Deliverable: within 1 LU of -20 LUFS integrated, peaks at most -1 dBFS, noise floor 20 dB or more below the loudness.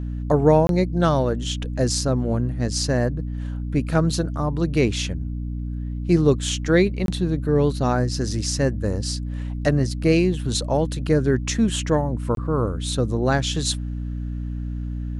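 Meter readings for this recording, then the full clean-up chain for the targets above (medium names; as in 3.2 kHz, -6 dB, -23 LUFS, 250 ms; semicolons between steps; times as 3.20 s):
dropouts 3; longest dropout 22 ms; hum 60 Hz; highest harmonic 300 Hz; hum level -25 dBFS; loudness -22.5 LUFS; peak level -4.5 dBFS; loudness target -20.0 LUFS
-> interpolate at 0.67/7.06/12.35 s, 22 ms; hum notches 60/120/180/240/300 Hz; trim +2.5 dB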